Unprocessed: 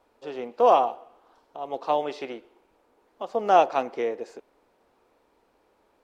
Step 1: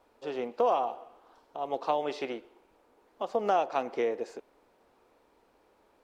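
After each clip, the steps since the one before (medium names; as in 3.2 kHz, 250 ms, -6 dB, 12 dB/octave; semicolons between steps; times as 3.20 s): compression 4:1, threshold -24 dBFS, peak gain reduction 10 dB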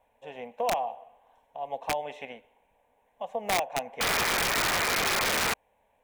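static phaser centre 1.3 kHz, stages 6; painted sound noise, 4.00–5.54 s, 370–2500 Hz -26 dBFS; integer overflow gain 20 dB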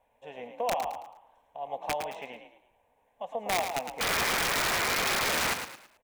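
frequency-shifting echo 109 ms, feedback 35%, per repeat +43 Hz, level -7.5 dB; trim -2 dB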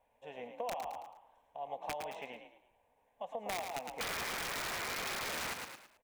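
compression, threshold -32 dBFS, peak gain reduction 7 dB; trim -4 dB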